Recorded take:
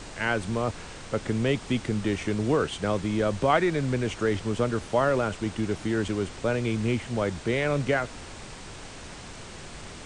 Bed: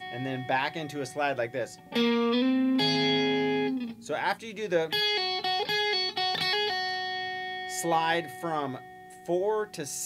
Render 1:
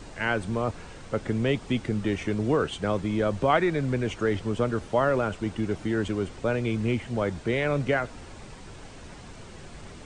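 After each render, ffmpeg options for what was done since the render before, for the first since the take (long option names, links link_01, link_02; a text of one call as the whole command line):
ffmpeg -i in.wav -af "afftdn=noise_reduction=7:noise_floor=-42" out.wav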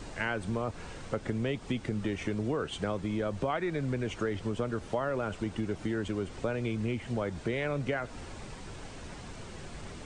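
ffmpeg -i in.wav -af "acompressor=threshold=-29dB:ratio=4" out.wav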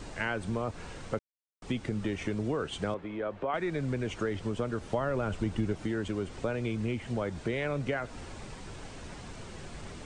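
ffmpeg -i in.wav -filter_complex "[0:a]asettb=1/sr,asplit=3[link_01][link_02][link_03];[link_01]atrim=end=2.944[link_04];[link_02]atrim=start=2.94:end=3.54,asetpts=PTS-STARTPTS,afade=type=in:duration=0.004:curve=qsin,afade=type=out:start_time=0.596:duration=0.004:curve=qsin,acrossover=split=300 3000:gain=0.251 1 0.0708[link_05][link_06][link_07];[link_05][link_06][link_07]amix=inputs=3:normalize=0[link_08];[link_03]atrim=start=3.536[link_09];[link_04][link_08]acrossfade=duration=0.004:curve1=hsin:curve2=qsin[link_10];[link_10][link_09]acrossfade=duration=0.004:curve1=qsin:curve2=hsin,asettb=1/sr,asplit=3[link_11][link_12][link_13];[link_11]atrim=end=4.934[link_14];[link_12]atrim=start=4.93:end=5.73,asetpts=PTS-STARTPTS,afade=type=in:duration=0.004:curve=qsin,afade=type=out:start_time=0.796:duration=0.004:curve=qsin,lowshelf=frequency=150:gain=8[link_15];[link_13]atrim=start=5.726[link_16];[link_14][link_15]acrossfade=duration=0.004:curve1=hsin:curve2=qsin[link_17];[link_17][link_16]acrossfade=duration=0.004:curve1=qsin:curve2=hsin,asplit=3[link_18][link_19][link_20];[link_18]atrim=end=1.19,asetpts=PTS-STARTPTS,afade=type=out:start_time=1.186:duration=0.004:curve=hsin[link_21];[link_19]atrim=start=1.19:end=1.62,asetpts=PTS-STARTPTS,volume=0[link_22];[link_20]atrim=start=1.62,asetpts=PTS-STARTPTS,afade=type=in:duration=0.004:curve=hsin[link_23];[link_21][link_22][link_23]concat=n=3:v=0:a=1" out.wav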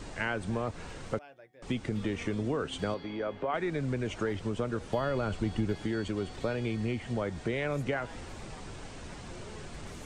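ffmpeg -i in.wav -i bed.wav -filter_complex "[1:a]volume=-24.5dB[link_01];[0:a][link_01]amix=inputs=2:normalize=0" out.wav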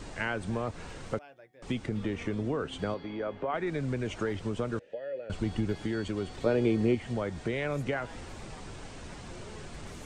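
ffmpeg -i in.wav -filter_complex "[0:a]asettb=1/sr,asplit=3[link_01][link_02][link_03];[link_01]atrim=end=1.864[link_04];[link_02]atrim=start=1.86:end=3.67,asetpts=PTS-STARTPTS,afade=type=in:duration=0.004:curve=qsin,afade=type=out:start_time=1.806:duration=0.004:curve=qsin,highshelf=frequency=3600:gain=-6[link_05];[link_03]atrim=start=3.666[link_06];[link_04][link_05]acrossfade=duration=0.004:curve1=hsin:curve2=qsin[link_07];[link_07][link_06]acrossfade=duration=0.004:curve1=qsin:curve2=hsin,asettb=1/sr,asplit=3[link_08][link_09][link_10];[link_08]atrim=end=4.794[link_11];[link_09]atrim=start=4.79:end=5.3,asetpts=PTS-STARTPTS,afade=type=in:duration=0.004:curve=qsin,afade=type=out:start_time=0.506:duration=0.004:curve=qsin,asplit=3[link_12][link_13][link_14];[link_12]bandpass=frequency=530:width_type=q:width=8,volume=0dB[link_15];[link_13]bandpass=frequency=1840:width_type=q:width=8,volume=-6dB[link_16];[link_14]bandpass=frequency=2480:width_type=q:width=8,volume=-9dB[link_17];[link_15][link_16][link_17]amix=inputs=3:normalize=0[link_18];[link_10]atrim=start=5.296[link_19];[link_11][link_18]acrossfade=duration=0.004:curve1=hsin:curve2=qsin[link_20];[link_20][link_19]acrossfade=duration=0.004:curve1=qsin:curve2=hsin,asettb=1/sr,asplit=3[link_21][link_22][link_23];[link_21]atrim=end=6.464[link_24];[link_22]atrim=start=6.46:end=6.95,asetpts=PTS-STARTPTS,afade=type=in:duration=0.004:curve=qsin,afade=type=out:start_time=0.486:duration=0.004:curve=qsin,equalizer=frequency=380:width=0.77:gain=10[link_25];[link_23]atrim=start=6.946[link_26];[link_24][link_25]acrossfade=duration=0.004:curve1=hsin:curve2=qsin[link_27];[link_27][link_26]acrossfade=duration=0.004:curve1=qsin:curve2=hsin" out.wav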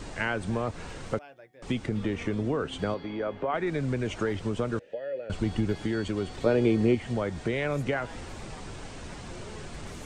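ffmpeg -i in.wav -af "volume=3dB" out.wav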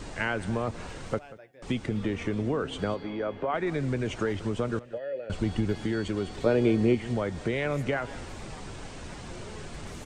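ffmpeg -i in.wav -af "aecho=1:1:187:0.119" out.wav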